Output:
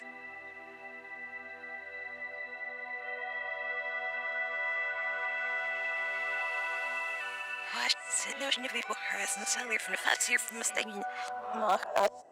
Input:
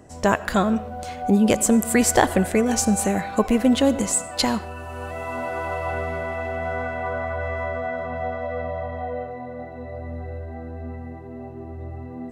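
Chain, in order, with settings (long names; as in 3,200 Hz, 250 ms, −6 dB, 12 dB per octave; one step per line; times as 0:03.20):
played backwards from end to start
dynamic equaliser 2,200 Hz, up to −5 dB, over −40 dBFS, Q 1.7
band-pass filter sweep 2,200 Hz → 680 Hz, 0:10.58–0:11.94
asymmetric clip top −19 dBFS
spectral tilt +3 dB per octave
multiband upward and downward compressor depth 40%
level +3.5 dB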